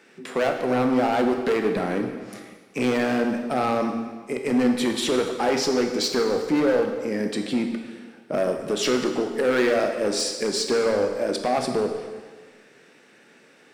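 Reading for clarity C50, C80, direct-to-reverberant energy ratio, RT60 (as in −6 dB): 6.0 dB, 7.5 dB, 4.0 dB, 1.5 s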